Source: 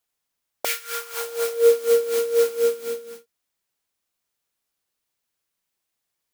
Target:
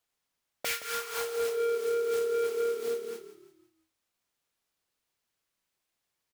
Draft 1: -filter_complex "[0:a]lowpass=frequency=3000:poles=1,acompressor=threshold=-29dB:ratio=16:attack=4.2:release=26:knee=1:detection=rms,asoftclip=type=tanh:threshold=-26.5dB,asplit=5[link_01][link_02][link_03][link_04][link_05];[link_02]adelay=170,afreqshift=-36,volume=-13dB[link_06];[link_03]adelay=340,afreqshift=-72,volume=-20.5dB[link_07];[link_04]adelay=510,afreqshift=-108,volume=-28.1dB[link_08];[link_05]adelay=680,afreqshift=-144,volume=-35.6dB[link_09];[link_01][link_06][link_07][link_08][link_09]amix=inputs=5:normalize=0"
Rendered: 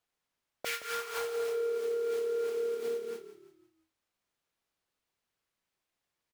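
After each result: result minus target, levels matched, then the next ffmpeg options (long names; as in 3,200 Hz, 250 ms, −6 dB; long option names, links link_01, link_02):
downward compressor: peak gain reduction +8.5 dB; 8,000 Hz band −3.0 dB
-filter_complex "[0:a]lowpass=frequency=3000:poles=1,acompressor=threshold=-20dB:ratio=16:attack=4.2:release=26:knee=1:detection=rms,asoftclip=type=tanh:threshold=-26.5dB,asplit=5[link_01][link_02][link_03][link_04][link_05];[link_02]adelay=170,afreqshift=-36,volume=-13dB[link_06];[link_03]adelay=340,afreqshift=-72,volume=-20.5dB[link_07];[link_04]adelay=510,afreqshift=-108,volume=-28.1dB[link_08];[link_05]adelay=680,afreqshift=-144,volume=-35.6dB[link_09];[link_01][link_06][link_07][link_08][link_09]amix=inputs=5:normalize=0"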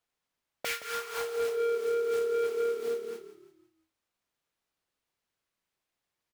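8,000 Hz band −4.0 dB
-filter_complex "[0:a]lowpass=frequency=6800:poles=1,acompressor=threshold=-20dB:ratio=16:attack=4.2:release=26:knee=1:detection=rms,asoftclip=type=tanh:threshold=-26.5dB,asplit=5[link_01][link_02][link_03][link_04][link_05];[link_02]adelay=170,afreqshift=-36,volume=-13dB[link_06];[link_03]adelay=340,afreqshift=-72,volume=-20.5dB[link_07];[link_04]adelay=510,afreqshift=-108,volume=-28.1dB[link_08];[link_05]adelay=680,afreqshift=-144,volume=-35.6dB[link_09];[link_01][link_06][link_07][link_08][link_09]amix=inputs=5:normalize=0"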